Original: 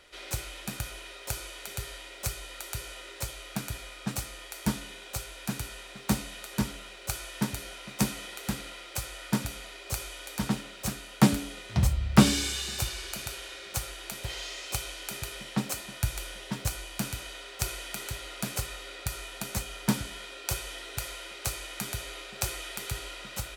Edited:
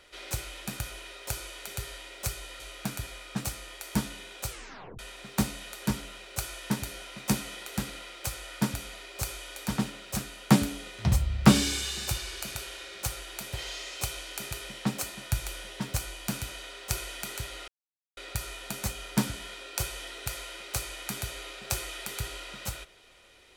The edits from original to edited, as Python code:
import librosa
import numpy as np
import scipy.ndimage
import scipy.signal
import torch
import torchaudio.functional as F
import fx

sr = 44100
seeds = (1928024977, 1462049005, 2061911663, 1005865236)

y = fx.edit(x, sr, fx.cut(start_s=2.6, length_s=0.71),
    fx.tape_stop(start_s=5.2, length_s=0.5),
    fx.silence(start_s=18.39, length_s=0.49), tone=tone)